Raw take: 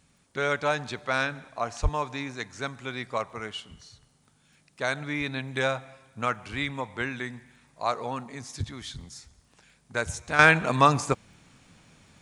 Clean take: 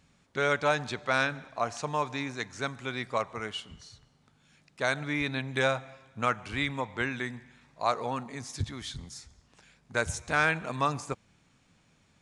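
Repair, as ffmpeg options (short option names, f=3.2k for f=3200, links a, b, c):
-filter_complex "[0:a]adeclick=t=4,asplit=3[a][b][c];[a]afade=t=out:st=1.82:d=0.02[d];[b]highpass=f=140:w=0.5412,highpass=f=140:w=1.3066,afade=t=in:st=1.82:d=0.02,afade=t=out:st=1.94:d=0.02[e];[c]afade=t=in:st=1.94:d=0.02[f];[d][e][f]amix=inputs=3:normalize=0,agate=range=-21dB:threshold=-54dB,asetnsamples=n=441:p=0,asendcmd='10.39 volume volume -9dB',volume=0dB"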